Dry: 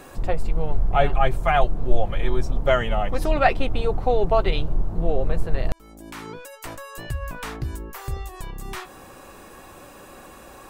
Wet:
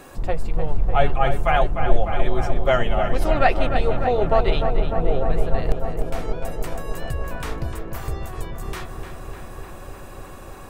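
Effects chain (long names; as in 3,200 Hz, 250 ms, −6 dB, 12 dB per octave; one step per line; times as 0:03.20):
feedback echo with a low-pass in the loop 300 ms, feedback 84%, low-pass 3,100 Hz, level −7.5 dB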